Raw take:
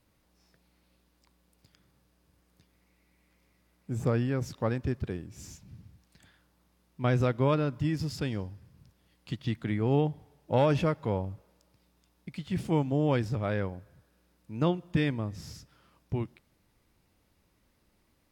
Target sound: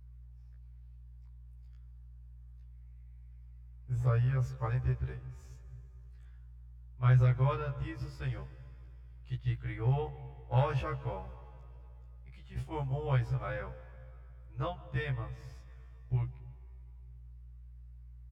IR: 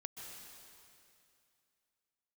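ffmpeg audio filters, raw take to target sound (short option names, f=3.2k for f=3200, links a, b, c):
-filter_complex "[0:a]aeval=exprs='val(0)+0.00355*(sin(2*PI*60*n/s)+sin(2*PI*2*60*n/s)/2+sin(2*PI*3*60*n/s)/3+sin(2*PI*4*60*n/s)/4+sin(2*PI*5*60*n/s)/5)':c=same,firequalizer=gain_entry='entry(120,0);entry(210,-29);entry(340,-14);entry(700,-8);entry(1200,-4);entry(4100,-13)':delay=0.05:min_phase=1,agate=range=-6dB:threshold=-39dB:ratio=16:detection=peak,asplit=2[a][b];[1:a]atrim=start_sample=2205[c];[b][c]afir=irnorm=-1:irlink=0,volume=-8dB[d];[a][d]amix=inputs=2:normalize=0,afftfilt=real='re*1.73*eq(mod(b,3),0)':imag='im*1.73*eq(mod(b,3),0)':win_size=2048:overlap=0.75,volume=2.5dB"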